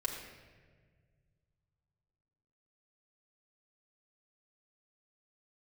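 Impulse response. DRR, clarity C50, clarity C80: -3.0 dB, 4.0 dB, 5.0 dB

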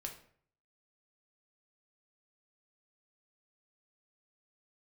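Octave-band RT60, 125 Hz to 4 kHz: 0.75, 0.55, 0.60, 0.55, 0.50, 0.40 s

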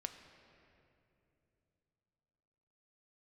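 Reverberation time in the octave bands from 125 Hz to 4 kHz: 4.0, 3.7, 3.3, 2.5, 2.4, 1.8 s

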